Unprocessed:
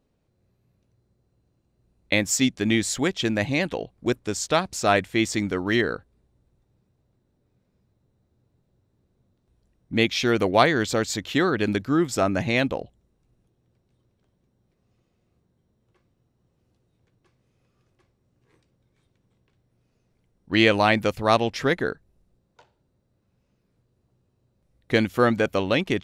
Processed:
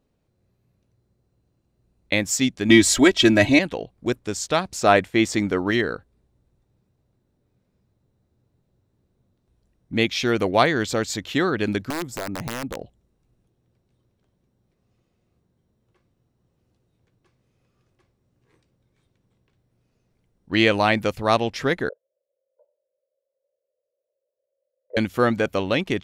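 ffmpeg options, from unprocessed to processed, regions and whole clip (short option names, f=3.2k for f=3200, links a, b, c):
-filter_complex "[0:a]asettb=1/sr,asplit=3[a][b][c];[a]atrim=end=2.694[d];[b]atrim=start=2.69:end=3.59,asetpts=PTS-STARTPTS,afade=t=in:d=0.004:c=qsin,afade=t=out:st=0.896:d=0.004:c=qsin,acontrast=56,aecho=1:1:3.1:0.87,atrim=end_sample=39690[e];[c]atrim=start=3.586[f];[d][e]acrossfade=d=0.004:c1=hsin:c2=qsin[g];[g][f]acrossfade=d=0.004:c1=qsin:c2=hsin,asettb=1/sr,asplit=3[h][i][j];[h]atrim=end=4.814[k];[i]atrim=start=4.81:end=5.71,asetpts=PTS-STARTPTS,afade=t=in:d=0.004:c=qsin,afade=t=out:st=0.896:d=0.004:c=qsin,agate=range=-33dB:threshold=-44dB:ratio=3:release=100:detection=peak,equalizer=f=620:w=0.33:g=4.5[l];[j]atrim=start=5.706[m];[k][l]acrossfade=d=0.004:c1=hsin:c2=qsin[n];[n][m]acrossfade=d=0.004:c1=qsin:c2=hsin,asettb=1/sr,asplit=3[o][p][q];[o]atrim=end=11.904[r];[p]atrim=start=11.9:end=12.81,asetpts=PTS-STARTPTS,afade=t=in:d=0.004:c=qsin,afade=t=out:st=0.906:d=0.004:c=qsin,equalizer=f=3k:w=0.42:g=-12.5,acompressor=threshold=-26dB:ratio=3:attack=3.2:release=140:knee=1:detection=peak,aeval=exprs='(mod(11.9*val(0)+1,2)-1)/11.9':c=same[s];[q]atrim=start=12.806[t];[r][s]acrossfade=d=0.004:c1=hsin:c2=qsin[u];[u][t]acrossfade=d=0.004:c1=qsin:c2=hsin,asettb=1/sr,asplit=3[v][w][x];[v]atrim=end=21.894[y];[w]atrim=start=21.89:end=24.97,asetpts=PTS-STARTPTS,afade=t=in:d=0.004:c=qsin,afade=t=out:st=3.076:d=0.004:c=qsin,asuperpass=centerf=570:order=4:qfactor=4.5,aecho=1:1:2:0.84,atrim=end_sample=135828[z];[x]atrim=start=24.966[aa];[y][z]acrossfade=d=0.004:c1=hsin:c2=qsin[ab];[ab][aa]acrossfade=d=0.004:c1=qsin:c2=hsin"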